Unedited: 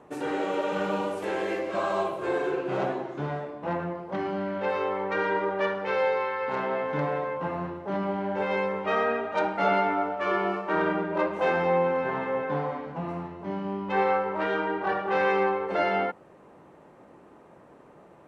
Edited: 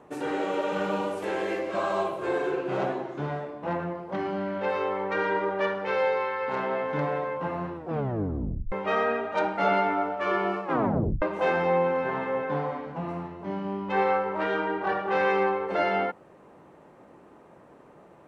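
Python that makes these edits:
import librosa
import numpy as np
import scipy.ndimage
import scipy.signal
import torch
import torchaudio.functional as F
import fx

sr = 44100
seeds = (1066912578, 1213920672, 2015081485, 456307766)

y = fx.edit(x, sr, fx.tape_stop(start_s=7.74, length_s=0.98),
    fx.tape_stop(start_s=10.64, length_s=0.58), tone=tone)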